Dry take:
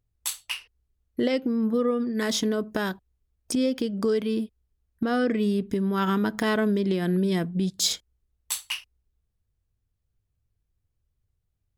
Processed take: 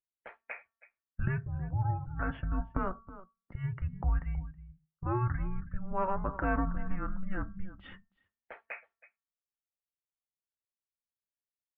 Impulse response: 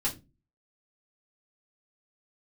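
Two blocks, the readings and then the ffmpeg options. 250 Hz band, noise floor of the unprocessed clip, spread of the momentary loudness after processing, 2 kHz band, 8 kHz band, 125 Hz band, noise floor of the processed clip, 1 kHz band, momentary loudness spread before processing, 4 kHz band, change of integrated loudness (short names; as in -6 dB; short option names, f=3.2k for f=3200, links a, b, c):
-15.0 dB, -78 dBFS, 20 LU, -8.0 dB, under -40 dB, -1.0 dB, under -85 dBFS, -3.5 dB, 9 LU, under -30 dB, -9.5 dB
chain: -filter_complex "[0:a]aecho=1:1:322:0.168,asplit=2[a][b];[1:a]atrim=start_sample=2205,lowshelf=f=200:g=10.5[c];[b][c]afir=irnorm=-1:irlink=0,volume=-15dB[d];[a][d]amix=inputs=2:normalize=0,highpass=f=330:t=q:w=0.5412,highpass=f=330:t=q:w=1.307,lowpass=f=2.3k:t=q:w=0.5176,lowpass=f=2.3k:t=q:w=0.7071,lowpass=f=2.3k:t=q:w=1.932,afreqshift=-380,bandreject=f=226.6:t=h:w=4,bandreject=f=453.2:t=h:w=4,bandreject=f=679.8:t=h:w=4,bandreject=f=906.4:t=h:w=4,bandreject=f=1.133k:t=h:w=4,bandreject=f=1.3596k:t=h:w=4,bandreject=f=1.5862k:t=h:w=4,bandreject=f=1.8128k:t=h:w=4,afftdn=nr=15:nf=-49,volume=-4dB"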